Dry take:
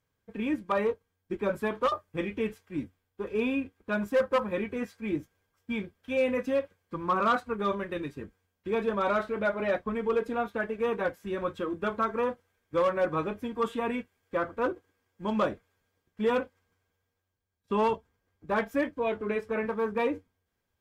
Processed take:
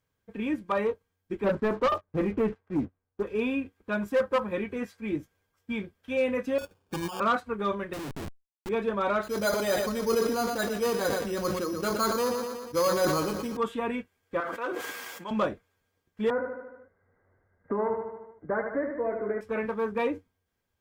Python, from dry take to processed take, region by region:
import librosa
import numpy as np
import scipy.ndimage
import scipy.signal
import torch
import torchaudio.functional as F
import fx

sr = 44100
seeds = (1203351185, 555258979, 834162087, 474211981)

y = fx.chain(x, sr, fx.lowpass(hz=1300.0, slope=12),
    fx.leveller(passes=2), at=(1.44, 3.23))
y = fx.chain(y, sr, fx.over_compress(threshold_db=-34.0, ratio=-1.0),
    fx.sample_hold(seeds[0], rate_hz=2000.0, jitter_pct=0), at=(6.58, 7.2))
y = fx.chain(y, sr, fx.tilt_shelf(db=4.5, hz=750.0),
    fx.schmitt(flips_db=-46.0),
    fx.env_flatten(amount_pct=50), at=(7.93, 8.69))
y = fx.chain(y, sr, fx.resample_bad(factor=8, down='none', up='hold'),
    fx.echo_feedback(ms=119, feedback_pct=51, wet_db=-11.5),
    fx.sustainer(db_per_s=36.0), at=(9.23, 13.57))
y = fx.chain(y, sr, fx.highpass(hz=210.0, slope=24),
    fx.peak_eq(hz=280.0, db=-13.5, octaves=2.1),
    fx.sustainer(db_per_s=23.0), at=(14.4, 15.31))
y = fx.chain(y, sr, fx.cheby_ripple(hz=2100.0, ripple_db=6),
    fx.echo_feedback(ms=75, feedback_pct=51, wet_db=-6),
    fx.band_squash(depth_pct=70), at=(16.3, 19.41))